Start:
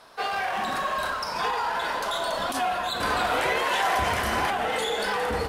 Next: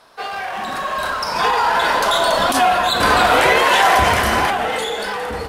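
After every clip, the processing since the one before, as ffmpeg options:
-af "dynaudnorm=f=290:g=9:m=3.98,volume=1.19"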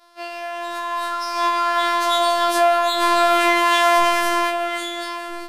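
-af "afftfilt=real='hypot(re,im)*cos(PI*b)':imag='0':win_size=512:overlap=0.75,afftfilt=real='re*2.83*eq(mod(b,8),0)':imag='im*2.83*eq(mod(b,8),0)':win_size=2048:overlap=0.75,volume=0.473"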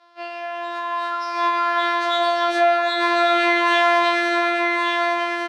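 -af "highpass=260,lowpass=3600,aecho=1:1:1147:0.596"

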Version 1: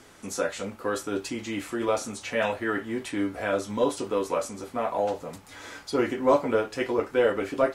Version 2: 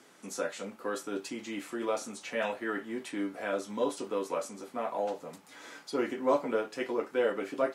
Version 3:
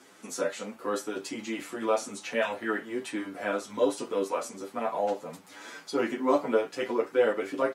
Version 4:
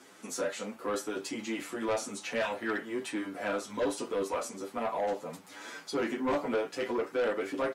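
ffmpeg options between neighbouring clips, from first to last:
-af "highpass=f=160:w=0.5412,highpass=f=160:w=1.3066,volume=0.501"
-filter_complex "[0:a]asplit=2[s0][s1];[s1]adelay=8.3,afreqshift=2.4[s2];[s0][s2]amix=inputs=2:normalize=1,volume=2.11"
-af "asoftclip=type=tanh:threshold=0.0562"

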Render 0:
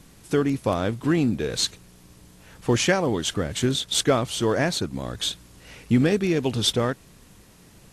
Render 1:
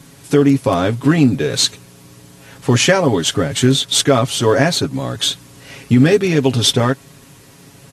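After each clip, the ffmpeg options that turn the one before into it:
-af "highpass=72,aecho=1:1:7.3:0.68,alimiter=level_in=2.66:limit=0.891:release=50:level=0:latency=1,volume=0.891"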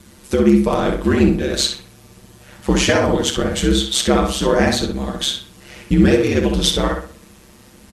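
-filter_complex "[0:a]aeval=exprs='val(0)*sin(2*PI*68*n/s)':c=same,asplit=2[s0][s1];[s1]adelay=34,volume=0.211[s2];[s0][s2]amix=inputs=2:normalize=0,asplit=2[s3][s4];[s4]adelay=63,lowpass=f=3100:p=1,volume=0.668,asplit=2[s5][s6];[s6]adelay=63,lowpass=f=3100:p=1,volume=0.38,asplit=2[s7][s8];[s8]adelay=63,lowpass=f=3100:p=1,volume=0.38,asplit=2[s9][s10];[s10]adelay=63,lowpass=f=3100:p=1,volume=0.38,asplit=2[s11][s12];[s12]adelay=63,lowpass=f=3100:p=1,volume=0.38[s13];[s3][s5][s7][s9][s11][s13]amix=inputs=6:normalize=0,volume=0.891"

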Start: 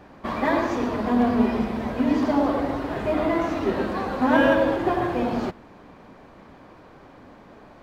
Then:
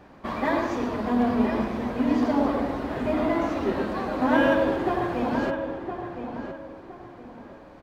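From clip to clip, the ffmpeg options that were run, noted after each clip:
-filter_complex "[0:a]asplit=2[s0][s1];[s1]adelay=1014,lowpass=f=2300:p=1,volume=0.422,asplit=2[s2][s3];[s3]adelay=1014,lowpass=f=2300:p=1,volume=0.31,asplit=2[s4][s5];[s5]adelay=1014,lowpass=f=2300:p=1,volume=0.31,asplit=2[s6][s7];[s7]adelay=1014,lowpass=f=2300:p=1,volume=0.31[s8];[s0][s2][s4][s6][s8]amix=inputs=5:normalize=0,volume=0.75"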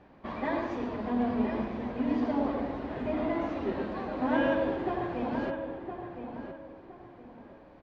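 -af "lowpass=3800,equalizer=f=1300:t=o:w=0.63:g=-3.5,volume=0.501"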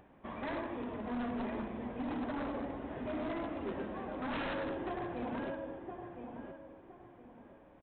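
-af "acompressor=mode=upward:threshold=0.00282:ratio=2.5,aresample=8000,aeval=exprs='0.0501*(abs(mod(val(0)/0.0501+3,4)-2)-1)':c=same,aresample=44100,volume=0.501"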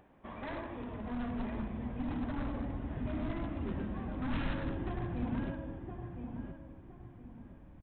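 -af "asubboost=boost=8.5:cutoff=170,volume=0.794"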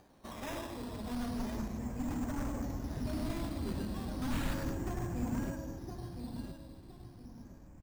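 -af "acrusher=samples=8:mix=1:aa=0.000001:lfo=1:lforange=4.8:lforate=0.34"

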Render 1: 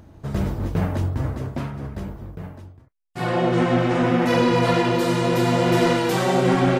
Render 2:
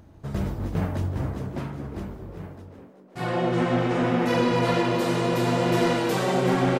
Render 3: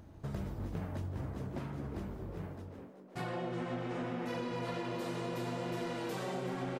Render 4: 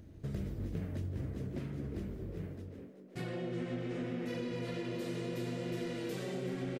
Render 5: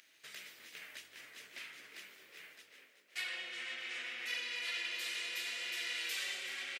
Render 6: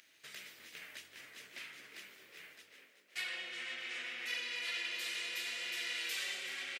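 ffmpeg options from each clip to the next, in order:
-filter_complex "[0:a]asplit=6[s0][s1][s2][s3][s4][s5];[s1]adelay=380,afreqshift=97,volume=0.251[s6];[s2]adelay=760,afreqshift=194,volume=0.129[s7];[s3]adelay=1140,afreqshift=291,volume=0.0653[s8];[s4]adelay=1520,afreqshift=388,volume=0.0335[s9];[s5]adelay=1900,afreqshift=485,volume=0.017[s10];[s0][s6][s7][s8][s9][s10]amix=inputs=6:normalize=0,volume=0.631"
-af "acompressor=threshold=0.0224:ratio=5,volume=0.668"
-af "firequalizer=gain_entry='entry(440,0);entry(860,-14);entry(1900,-2)':delay=0.05:min_phase=1,volume=1.12"
-af "highpass=f=2300:t=q:w=1.5,volume=2.82"
-af "lowshelf=f=240:g=5"

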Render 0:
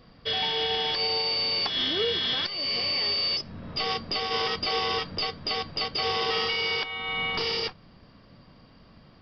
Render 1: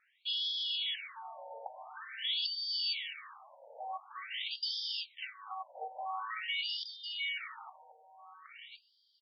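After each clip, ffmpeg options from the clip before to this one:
-af "aecho=1:1:1084:0.282,afftfilt=real='re*between(b*sr/1024,660*pow(4400/660,0.5+0.5*sin(2*PI*0.47*pts/sr))/1.41,660*pow(4400/660,0.5+0.5*sin(2*PI*0.47*pts/sr))*1.41)':imag='im*between(b*sr/1024,660*pow(4400/660,0.5+0.5*sin(2*PI*0.47*pts/sr))/1.41,660*pow(4400/660,0.5+0.5*sin(2*PI*0.47*pts/sr))*1.41)':win_size=1024:overlap=0.75,volume=0.531"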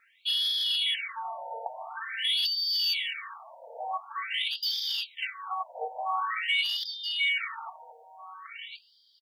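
-filter_complex "[0:a]acrossover=split=2700[s0][s1];[s1]asoftclip=type=tanh:threshold=0.0168[s2];[s0][s2]amix=inputs=2:normalize=0,aecho=1:1:4.4:0.51,volume=2.51"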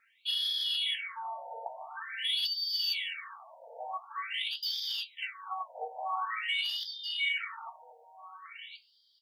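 -af "flanger=delay=8.1:depth=9.6:regen=52:speed=0.38:shape=sinusoidal"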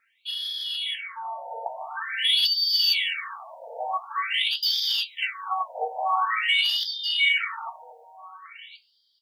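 -af "dynaudnorm=f=320:g=9:m=3.16"

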